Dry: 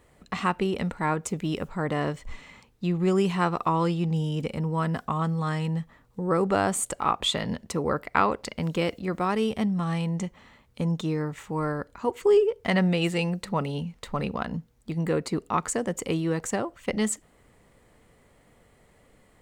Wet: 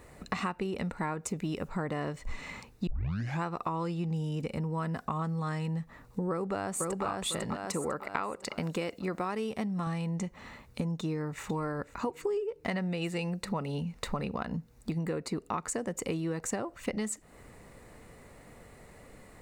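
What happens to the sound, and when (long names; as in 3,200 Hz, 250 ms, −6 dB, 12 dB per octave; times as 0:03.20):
0:02.87: tape start 0.57 s
0:06.30–0:07.04: delay throw 500 ms, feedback 35%, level −2 dB
0:07.56–0:09.87: low-shelf EQ 130 Hz −10 dB
0:10.99–0:11.44: delay throw 500 ms, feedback 30%, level −17.5 dB
whole clip: notch filter 3,200 Hz, Q 7.4; downward compressor 8 to 1, threshold −37 dBFS; level +6.5 dB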